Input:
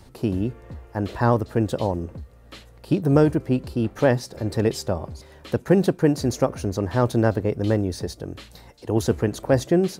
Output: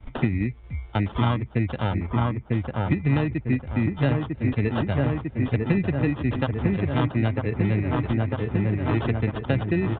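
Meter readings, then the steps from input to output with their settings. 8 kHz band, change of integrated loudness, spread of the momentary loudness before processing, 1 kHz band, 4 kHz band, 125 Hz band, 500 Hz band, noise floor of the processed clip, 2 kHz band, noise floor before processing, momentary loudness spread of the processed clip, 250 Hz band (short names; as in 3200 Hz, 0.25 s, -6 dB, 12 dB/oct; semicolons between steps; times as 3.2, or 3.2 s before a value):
under -40 dB, -2.0 dB, 14 LU, -2.0 dB, -2.5 dB, +2.0 dB, -7.0 dB, -43 dBFS, +2.0 dB, -49 dBFS, 4 LU, -1.5 dB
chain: per-bin expansion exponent 1.5; expander -51 dBFS; bell 520 Hz -10 dB 1.4 oct; notch 1700 Hz; in parallel at -7.5 dB: hard clip -22 dBFS, distortion -12 dB; on the sum: sample-and-hold 20×; dark delay 0.949 s, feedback 65%, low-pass 1700 Hz, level -4.5 dB; downsampling 8000 Hz; three-band squash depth 100%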